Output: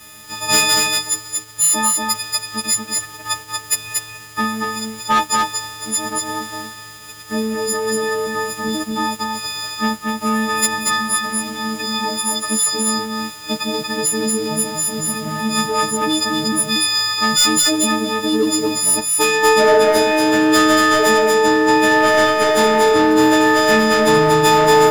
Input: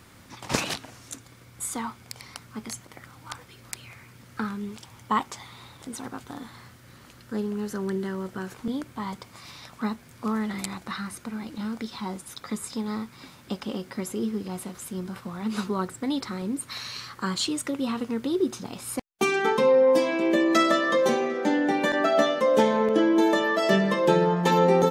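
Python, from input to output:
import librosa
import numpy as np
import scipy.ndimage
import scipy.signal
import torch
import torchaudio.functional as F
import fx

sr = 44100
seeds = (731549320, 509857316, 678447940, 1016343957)

y = fx.freq_snap(x, sr, grid_st=6)
y = fx.hum_notches(y, sr, base_hz=50, count=9)
y = fx.leveller(y, sr, passes=3)
y = y + 10.0 ** (-3.0 / 20.0) * np.pad(y, (int(234 * sr / 1000.0), 0))[:len(y)]
y = y * 10.0 ** (-3.0 / 20.0)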